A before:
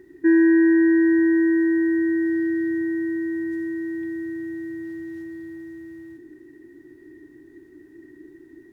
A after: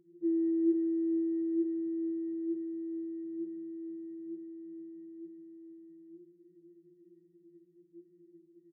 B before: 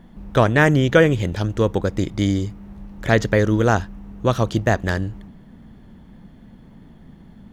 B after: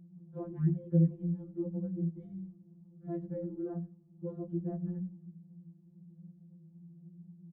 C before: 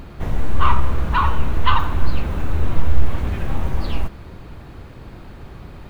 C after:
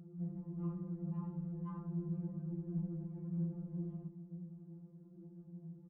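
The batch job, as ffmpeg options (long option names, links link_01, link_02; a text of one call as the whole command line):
ffmpeg -i in.wav -filter_complex "[0:a]equalizer=frequency=150:width=1.2:gain=-4,bandreject=frequency=60:width_type=h:width=6,bandreject=frequency=120:width_type=h:width=6,bandreject=frequency=180:width_type=h:width=6,flanger=delay=5.1:depth=1.8:regen=80:speed=1.1:shape=sinusoidal,asuperpass=centerf=160:order=4:qfactor=1.1,asplit=2[link_01][link_02];[link_02]aecho=0:1:91|182:0.0708|0.0198[link_03];[link_01][link_03]amix=inputs=2:normalize=0,afftfilt=real='re*2.83*eq(mod(b,8),0)':imag='im*2.83*eq(mod(b,8),0)':win_size=2048:overlap=0.75,volume=2.5dB" out.wav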